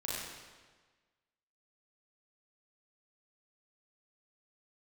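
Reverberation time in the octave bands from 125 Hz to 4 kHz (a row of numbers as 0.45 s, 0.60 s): 1.4 s, 1.4 s, 1.4 s, 1.4 s, 1.3 s, 1.2 s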